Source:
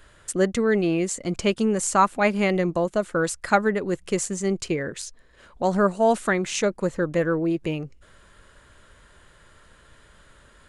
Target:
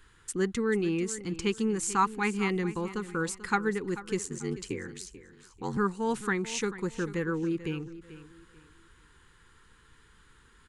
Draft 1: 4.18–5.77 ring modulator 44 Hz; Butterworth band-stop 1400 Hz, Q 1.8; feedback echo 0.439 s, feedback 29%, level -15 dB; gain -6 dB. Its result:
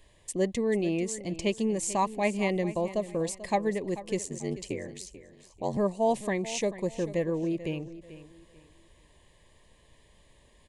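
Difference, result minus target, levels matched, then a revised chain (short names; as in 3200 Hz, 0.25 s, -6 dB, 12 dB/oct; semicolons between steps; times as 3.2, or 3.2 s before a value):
500 Hz band +2.5 dB
4.18–5.77 ring modulator 44 Hz; Butterworth band-stop 620 Hz, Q 1.8; feedback echo 0.439 s, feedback 29%, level -15 dB; gain -6 dB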